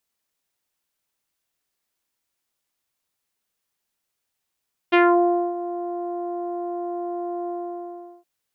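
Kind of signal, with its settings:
subtractive voice saw F4 24 dB per octave, low-pass 810 Hz, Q 1.7, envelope 2 octaves, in 0.25 s, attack 18 ms, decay 0.60 s, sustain −15 dB, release 0.76 s, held 2.56 s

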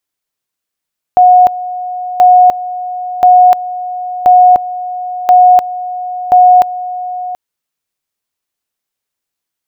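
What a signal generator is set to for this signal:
tone at two levels in turn 727 Hz −1.5 dBFS, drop 15.5 dB, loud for 0.30 s, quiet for 0.73 s, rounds 6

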